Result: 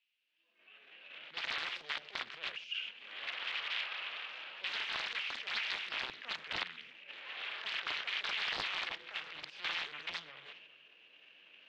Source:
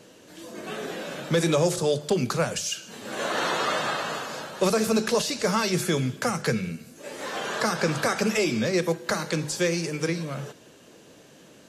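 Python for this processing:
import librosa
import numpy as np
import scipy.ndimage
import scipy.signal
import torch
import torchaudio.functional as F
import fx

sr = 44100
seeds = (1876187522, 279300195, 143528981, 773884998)

p1 = fx.fade_in_head(x, sr, length_s=3.12)
p2 = fx.recorder_agc(p1, sr, target_db=-16.5, rise_db_per_s=5.0, max_gain_db=30)
p3 = fx.transient(p2, sr, attack_db=-11, sustain_db=9)
p4 = fx.level_steps(p3, sr, step_db=13)
p5 = p3 + (p4 * 10.0 ** (1.0 / 20.0))
p6 = (np.mod(10.0 ** (15.5 / 20.0) * p5 + 1.0, 2.0) - 1.0) / 10.0 ** (15.5 / 20.0)
p7 = fx.dmg_noise_colour(p6, sr, seeds[0], colour='violet', level_db=-50.0)
p8 = fx.bandpass_q(p7, sr, hz=2700.0, q=6.2)
p9 = fx.air_absorb(p8, sr, metres=290.0)
p10 = p9 + fx.echo_single(p9, sr, ms=405, db=-19.5, dry=0)
y = fx.doppler_dist(p10, sr, depth_ms=0.85)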